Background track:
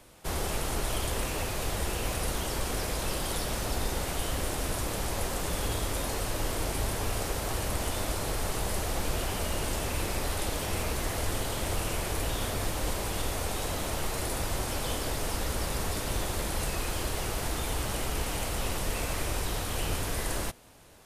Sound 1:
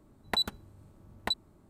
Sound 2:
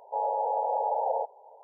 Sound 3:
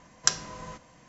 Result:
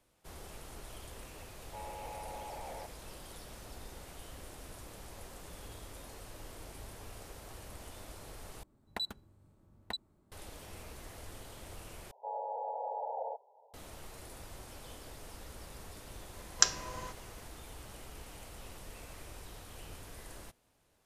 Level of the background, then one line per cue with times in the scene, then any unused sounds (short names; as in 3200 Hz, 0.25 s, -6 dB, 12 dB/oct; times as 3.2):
background track -17.5 dB
1.61 add 2 -13 dB + soft clip -29 dBFS
8.63 replace with 1 -9 dB
12.11 replace with 2 -10.5 dB
16.35 add 3 -1.5 dB + bell 180 Hz -15 dB 0.34 oct